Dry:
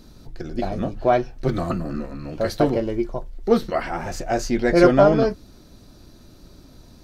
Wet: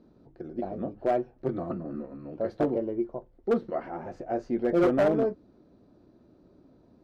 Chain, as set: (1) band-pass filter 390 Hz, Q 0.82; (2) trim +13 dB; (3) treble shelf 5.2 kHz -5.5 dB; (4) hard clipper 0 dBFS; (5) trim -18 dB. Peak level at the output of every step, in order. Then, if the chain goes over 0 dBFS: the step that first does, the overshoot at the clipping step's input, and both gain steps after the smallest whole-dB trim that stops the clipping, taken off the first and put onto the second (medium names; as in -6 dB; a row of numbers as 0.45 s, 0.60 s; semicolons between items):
-4.5 dBFS, +8.5 dBFS, +8.5 dBFS, 0.0 dBFS, -18.0 dBFS; step 2, 8.5 dB; step 2 +4 dB, step 5 -9 dB